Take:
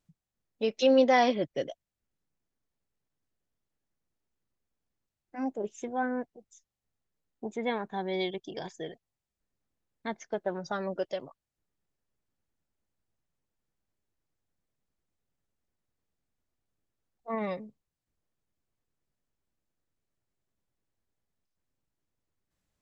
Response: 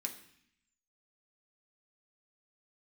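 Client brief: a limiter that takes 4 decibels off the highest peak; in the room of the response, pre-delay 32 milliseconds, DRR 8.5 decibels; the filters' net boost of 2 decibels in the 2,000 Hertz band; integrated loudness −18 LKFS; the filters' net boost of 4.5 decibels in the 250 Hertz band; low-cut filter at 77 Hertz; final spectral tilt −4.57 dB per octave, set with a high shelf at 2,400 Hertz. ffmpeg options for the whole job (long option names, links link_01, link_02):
-filter_complex "[0:a]highpass=77,equalizer=frequency=250:width_type=o:gain=5,equalizer=frequency=2000:width_type=o:gain=6,highshelf=frequency=2400:gain=-8.5,alimiter=limit=-15dB:level=0:latency=1,asplit=2[link_01][link_02];[1:a]atrim=start_sample=2205,adelay=32[link_03];[link_02][link_03]afir=irnorm=-1:irlink=0,volume=-7.5dB[link_04];[link_01][link_04]amix=inputs=2:normalize=0,volume=12dB"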